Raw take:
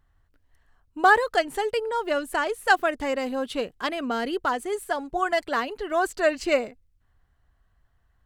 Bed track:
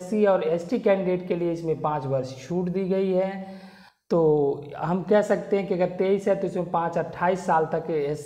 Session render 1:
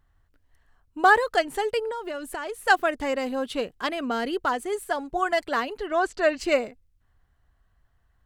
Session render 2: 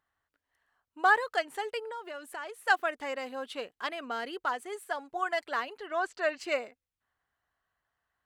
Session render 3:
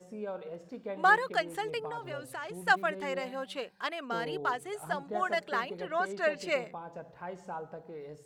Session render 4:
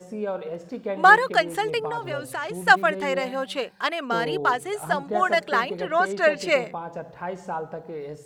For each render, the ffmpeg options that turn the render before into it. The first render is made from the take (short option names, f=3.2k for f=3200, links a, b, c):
-filter_complex "[0:a]asettb=1/sr,asplit=3[a][b][c];[a]atrim=end=1.914[d];[b]atrim=start=1.91:end=2.61,asetpts=PTS-STARTPTS,afade=t=in:d=0.004:c=qsin,afade=t=out:st=0.696:d=0.004:c=qsin,acompressor=threshold=-28dB:ratio=12:attack=3.2:release=140:knee=1:detection=peak[e];[c]atrim=start=2.606[f];[d][e]acrossfade=d=0.004:c1=hsin:c2=qsin[g];[g][f]acrossfade=d=0.004:c1=qsin:c2=hsin,asplit=3[h][i][j];[h]afade=t=out:st=5.86:d=0.02[k];[i]lowpass=6.3k,afade=t=in:st=5.86:d=0.02,afade=t=out:st=6.38:d=0.02[l];[j]afade=t=in:st=6.38:d=0.02[m];[k][l][m]amix=inputs=3:normalize=0"
-af "highpass=f=1.4k:p=1,highshelf=f=2.7k:g=-9.5"
-filter_complex "[1:a]volume=-18.5dB[a];[0:a][a]amix=inputs=2:normalize=0"
-af "volume=9.5dB"